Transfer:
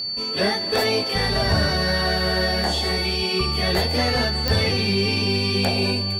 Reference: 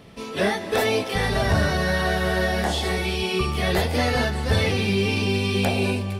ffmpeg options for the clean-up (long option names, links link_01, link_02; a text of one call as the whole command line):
ffmpeg -i in.wav -af "adeclick=threshold=4,bandreject=frequency=4500:width=30" out.wav